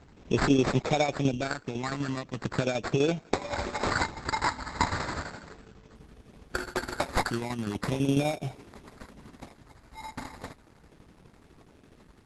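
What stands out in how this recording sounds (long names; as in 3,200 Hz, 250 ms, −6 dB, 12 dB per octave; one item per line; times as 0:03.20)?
tremolo saw down 12 Hz, depth 60%
phaser sweep stages 2, 0.37 Hz, lowest notch 550–2,100 Hz
aliases and images of a low sample rate 3,000 Hz, jitter 0%
Opus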